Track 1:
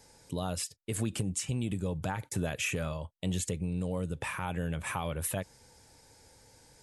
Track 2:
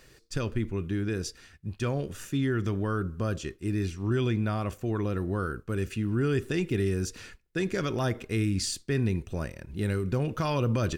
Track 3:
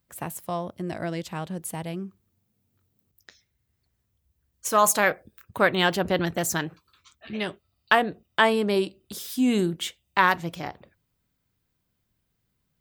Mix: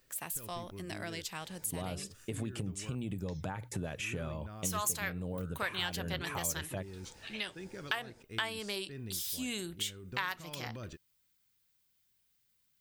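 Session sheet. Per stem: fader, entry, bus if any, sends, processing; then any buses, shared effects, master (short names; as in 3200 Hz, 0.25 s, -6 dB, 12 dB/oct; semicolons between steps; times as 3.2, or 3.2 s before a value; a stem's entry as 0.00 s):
+2.0 dB, 1.40 s, no send, high shelf 4500 Hz -8.5 dB; notches 60/120 Hz
-16.0 dB, 0.00 s, muted 2.95–3.84, no send, dry
-4.0 dB, 0.00 s, no send, tilt shelf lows -9.5 dB, about 1400 Hz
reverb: off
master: compressor 2.5:1, threshold -37 dBFS, peak gain reduction 16 dB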